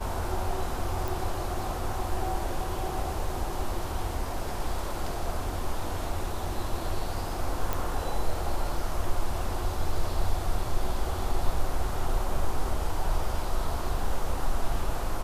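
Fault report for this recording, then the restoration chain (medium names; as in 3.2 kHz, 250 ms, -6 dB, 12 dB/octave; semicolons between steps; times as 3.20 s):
1.08 s: pop
7.73 s: pop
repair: de-click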